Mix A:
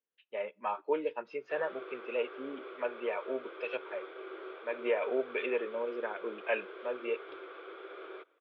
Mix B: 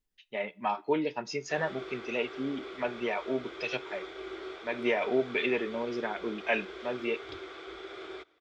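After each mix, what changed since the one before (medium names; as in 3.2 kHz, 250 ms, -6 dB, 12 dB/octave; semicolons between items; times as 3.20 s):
speech: send +7.5 dB; master: remove cabinet simulation 470–2600 Hz, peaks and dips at 510 Hz +7 dB, 750 Hz -7 dB, 2 kHz -9 dB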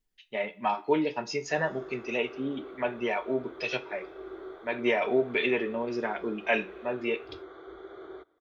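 speech: send +9.0 dB; background: add boxcar filter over 17 samples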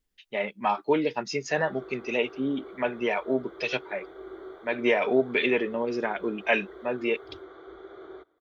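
speech +6.5 dB; reverb: off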